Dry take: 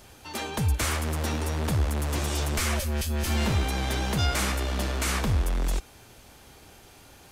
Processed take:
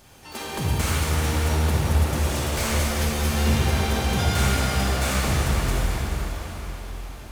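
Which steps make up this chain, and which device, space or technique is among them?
shimmer-style reverb (pitch-shifted copies added +12 semitones −10 dB; convolution reverb RT60 5.4 s, pre-delay 27 ms, DRR −5.5 dB)
level −2.5 dB

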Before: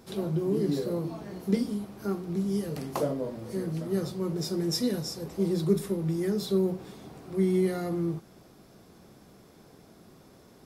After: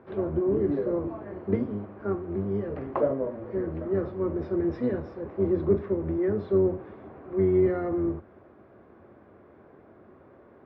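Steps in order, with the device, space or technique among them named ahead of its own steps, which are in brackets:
sub-octave bass pedal (sub-octave generator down 1 octave, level −3 dB; loudspeaker in its box 76–2,100 Hz, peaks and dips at 120 Hz −7 dB, 170 Hz −8 dB, 360 Hz +5 dB, 580 Hz +6 dB, 1,100 Hz +4 dB, 1,600 Hz +3 dB)

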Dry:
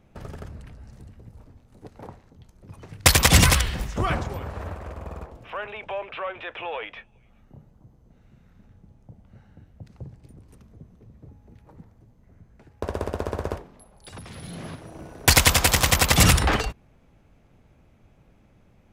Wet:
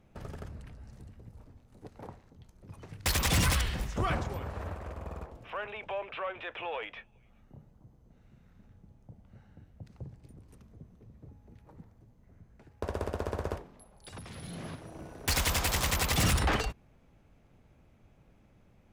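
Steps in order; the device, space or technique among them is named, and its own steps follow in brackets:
saturation between pre-emphasis and de-emphasis (high-shelf EQ 3,400 Hz +10.5 dB; soft clipping −14.5 dBFS, distortion −6 dB; high-shelf EQ 3,400 Hz −10.5 dB)
level −4.5 dB

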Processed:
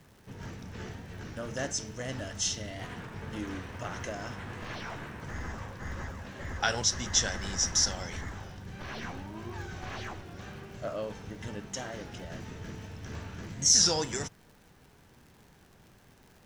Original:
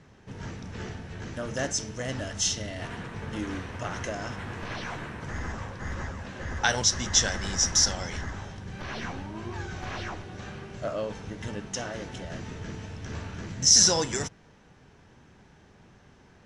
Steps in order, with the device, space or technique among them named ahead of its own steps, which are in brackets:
warped LP (wow of a warped record 33 1/3 rpm, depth 100 cents; surface crackle 98 per second −43 dBFS; pink noise bed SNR 32 dB)
level −4 dB

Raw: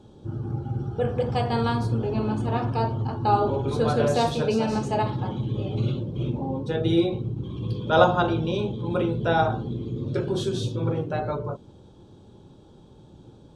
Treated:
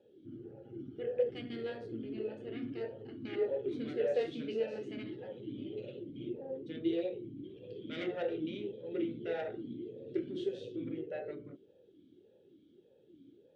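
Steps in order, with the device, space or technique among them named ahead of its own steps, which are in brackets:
talk box (tube saturation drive 18 dB, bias 0.45; formant filter swept between two vowels e-i 1.7 Hz)
level +1 dB

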